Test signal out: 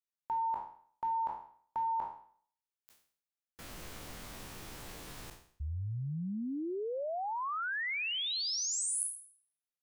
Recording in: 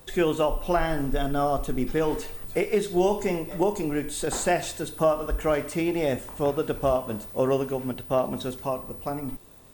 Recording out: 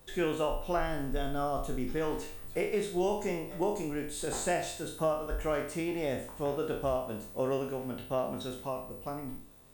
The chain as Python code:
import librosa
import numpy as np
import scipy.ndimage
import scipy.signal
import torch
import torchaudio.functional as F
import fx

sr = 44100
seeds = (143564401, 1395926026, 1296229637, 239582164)

y = fx.spec_trails(x, sr, decay_s=0.53)
y = y * 10.0 ** (-8.5 / 20.0)